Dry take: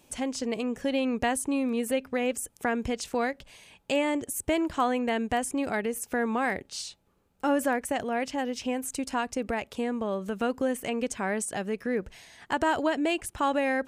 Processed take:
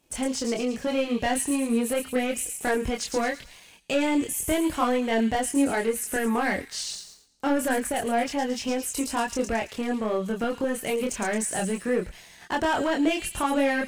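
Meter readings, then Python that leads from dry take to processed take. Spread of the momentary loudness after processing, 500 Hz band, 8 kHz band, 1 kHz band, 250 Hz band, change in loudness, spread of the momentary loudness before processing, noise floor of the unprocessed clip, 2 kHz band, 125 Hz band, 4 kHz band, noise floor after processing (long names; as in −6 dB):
5 LU, +2.5 dB, +5.5 dB, +1.5 dB, +3.5 dB, +3.0 dB, 6 LU, −66 dBFS, +2.5 dB, +4.0 dB, +4.0 dB, −51 dBFS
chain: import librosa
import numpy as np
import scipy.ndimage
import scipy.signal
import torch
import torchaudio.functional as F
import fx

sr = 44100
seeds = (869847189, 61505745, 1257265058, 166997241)

y = fx.echo_wet_highpass(x, sr, ms=111, feedback_pct=50, hz=4000.0, wet_db=-4.0)
y = fx.leveller(y, sr, passes=2)
y = fx.chorus_voices(y, sr, voices=6, hz=0.3, base_ms=25, depth_ms=3.5, mix_pct=45)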